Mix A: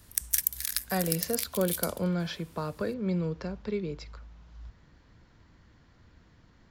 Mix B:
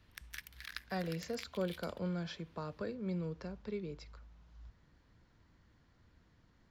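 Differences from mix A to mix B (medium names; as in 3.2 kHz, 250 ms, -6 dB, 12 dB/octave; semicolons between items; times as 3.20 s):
speech -8.5 dB; background: add distance through air 350 m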